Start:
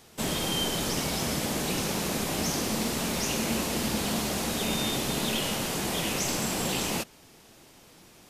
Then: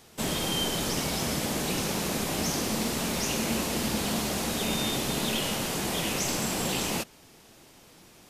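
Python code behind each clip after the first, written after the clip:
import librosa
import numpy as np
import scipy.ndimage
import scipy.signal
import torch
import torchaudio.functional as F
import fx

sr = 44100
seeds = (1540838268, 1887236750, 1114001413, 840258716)

y = x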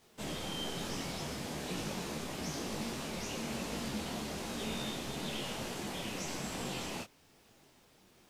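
y = fx.high_shelf(x, sr, hz=9600.0, db=-11.5)
y = fx.quant_dither(y, sr, seeds[0], bits=10, dither='none')
y = fx.detune_double(y, sr, cents=37)
y = y * 10.0 ** (-5.5 / 20.0)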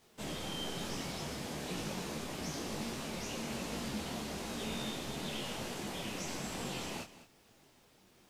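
y = x + 10.0 ** (-15.5 / 20.0) * np.pad(x, (int(209 * sr / 1000.0), 0))[:len(x)]
y = y * 10.0 ** (-1.0 / 20.0)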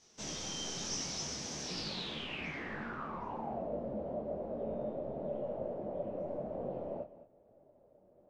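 y = fx.filter_sweep_lowpass(x, sr, from_hz=5900.0, to_hz=590.0, start_s=1.62, end_s=3.74, q=7.5)
y = y * 10.0 ** (-4.0 / 20.0)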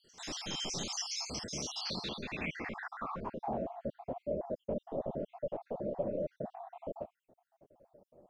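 y = fx.spec_dropout(x, sr, seeds[1], share_pct=59)
y = y * 10.0 ** (4.5 / 20.0)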